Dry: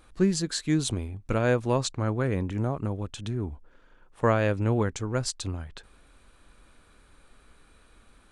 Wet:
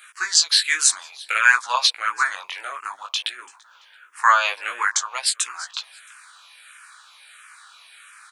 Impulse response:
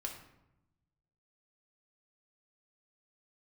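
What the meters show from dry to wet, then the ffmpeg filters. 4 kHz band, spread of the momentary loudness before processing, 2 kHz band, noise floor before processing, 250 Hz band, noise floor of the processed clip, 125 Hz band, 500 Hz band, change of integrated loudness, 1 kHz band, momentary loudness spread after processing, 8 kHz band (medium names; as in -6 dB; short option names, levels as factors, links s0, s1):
+16.0 dB, 10 LU, +17.0 dB, -59 dBFS, under -30 dB, -53 dBFS, under -40 dB, -12.0 dB, +8.0 dB, +12.0 dB, 16 LU, +15.0 dB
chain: -filter_complex "[0:a]highpass=f=1200:w=0.5412,highpass=f=1200:w=1.3066,flanger=delay=16:depth=5.8:speed=0.56,aecho=1:1:336|672:0.0794|0.027,alimiter=level_in=13.3:limit=0.891:release=50:level=0:latency=1,asplit=2[s0][s1];[s1]afreqshift=-1.5[s2];[s0][s2]amix=inputs=2:normalize=1"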